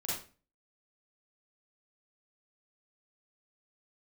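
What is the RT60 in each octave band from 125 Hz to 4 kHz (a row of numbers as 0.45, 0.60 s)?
0.50, 0.45, 0.40, 0.35, 0.35, 0.30 s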